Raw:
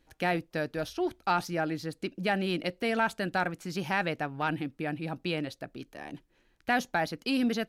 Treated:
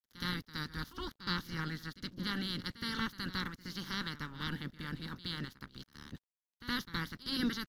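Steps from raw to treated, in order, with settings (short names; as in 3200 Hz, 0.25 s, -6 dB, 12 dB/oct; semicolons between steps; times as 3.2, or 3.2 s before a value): spectral limiter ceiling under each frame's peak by 26 dB; resonant low shelf 310 Hz +7.5 dB, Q 1.5; fixed phaser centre 2500 Hz, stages 6; crossover distortion -52.5 dBFS; pre-echo 69 ms -15 dB; gain -6.5 dB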